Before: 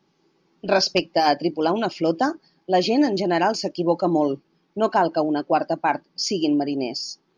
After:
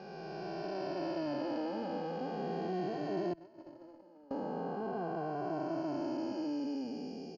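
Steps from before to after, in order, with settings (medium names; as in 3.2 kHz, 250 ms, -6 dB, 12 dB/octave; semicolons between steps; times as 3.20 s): spectral blur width 1220 ms; low-pass 1.9 kHz 6 dB/octave; 3.33–4.31 s: gate -23 dBFS, range -27 dB; compression 1.5:1, threshold -39 dBFS, peak gain reduction 5.5 dB; endless flanger 2.1 ms -0.41 Hz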